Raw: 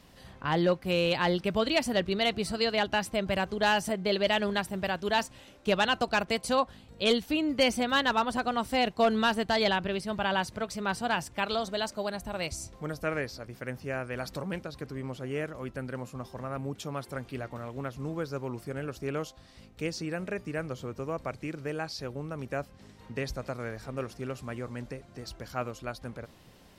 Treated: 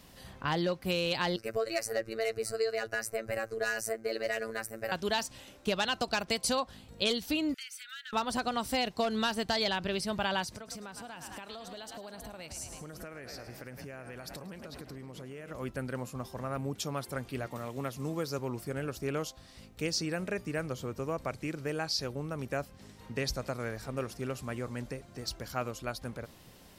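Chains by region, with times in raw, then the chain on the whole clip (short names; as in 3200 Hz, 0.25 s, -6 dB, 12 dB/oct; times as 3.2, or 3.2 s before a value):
1.36–4.92 bell 470 Hz +6 dB 0.24 oct + fixed phaser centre 900 Hz, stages 6 + robotiser 112 Hz
7.54–8.13 Chebyshev high-pass 1300 Hz, order 10 + compressor 4:1, threshold -46 dBFS
10.44–15.51 frequency-shifting echo 0.106 s, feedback 62%, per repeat +40 Hz, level -13.5 dB + compressor 16:1, threshold -40 dBFS
17.46–18.39 HPF 100 Hz + high shelf 4100 Hz +5.5 dB + notch 1500 Hz, Q 13
whole clip: dynamic EQ 5000 Hz, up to +6 dB, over -48 dBFS, Q 1.3; compressor, threshold -27 dBFS; high shelf 7100 Hz +8.5 dB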